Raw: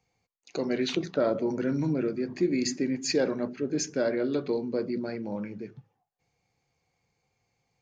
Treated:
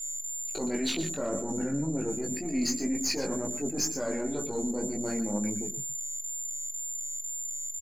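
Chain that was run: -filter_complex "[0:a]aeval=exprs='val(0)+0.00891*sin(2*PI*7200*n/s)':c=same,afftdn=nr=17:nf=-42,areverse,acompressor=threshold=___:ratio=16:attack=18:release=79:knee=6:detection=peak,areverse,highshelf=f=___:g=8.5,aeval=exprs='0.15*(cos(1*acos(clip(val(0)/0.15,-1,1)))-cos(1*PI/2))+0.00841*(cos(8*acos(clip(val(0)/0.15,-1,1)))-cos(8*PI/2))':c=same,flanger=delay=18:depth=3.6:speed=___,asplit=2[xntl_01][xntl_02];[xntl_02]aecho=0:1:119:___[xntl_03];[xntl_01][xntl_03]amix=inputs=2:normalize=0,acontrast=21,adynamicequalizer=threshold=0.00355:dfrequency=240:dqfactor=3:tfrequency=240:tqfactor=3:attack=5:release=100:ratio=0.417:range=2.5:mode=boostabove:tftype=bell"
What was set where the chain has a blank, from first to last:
-34dB, 3.7k, 2, 0.237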